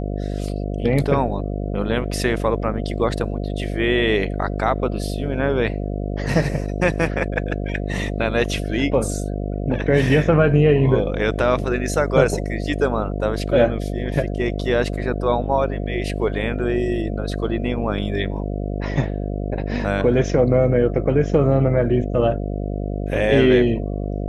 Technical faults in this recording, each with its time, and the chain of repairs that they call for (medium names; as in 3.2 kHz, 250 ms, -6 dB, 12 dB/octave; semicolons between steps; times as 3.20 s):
buzz 50 Hz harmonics 14 -25 dBFS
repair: de-hum 50 Hz, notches 14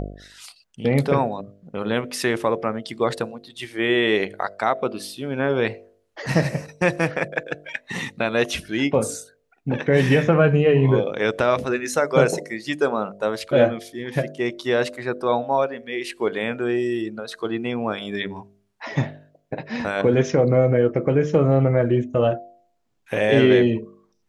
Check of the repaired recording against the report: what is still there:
nothing left